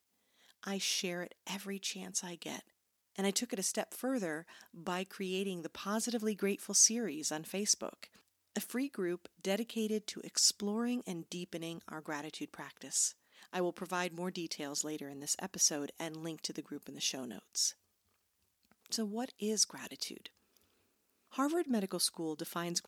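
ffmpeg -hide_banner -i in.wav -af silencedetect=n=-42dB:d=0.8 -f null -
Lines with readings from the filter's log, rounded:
silence_start: 17.71
silence_end: 18.86 | silence_duration: 1.15
silence_start: 20.27
silence_end: 21.36 | silence_duration: 1.09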